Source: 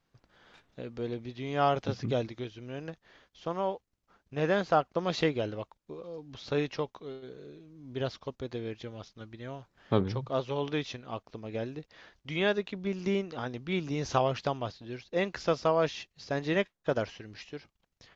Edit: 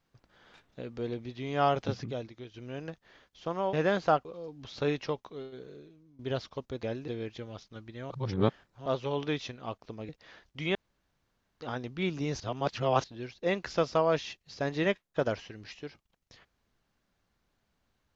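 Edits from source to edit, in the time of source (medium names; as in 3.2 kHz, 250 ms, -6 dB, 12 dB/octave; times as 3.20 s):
2.04–2.54 s: gain -7 dB
3.73–4.37 s: delete
4.89–5.95 s: delete
7.38–7.89 s: fade out, to -16 dB
9.55–10.31 s: reverse
11.54–11.79 s: move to 8.53 s
12.45–13.31 s: room tone
14.10–14.74 s: reverse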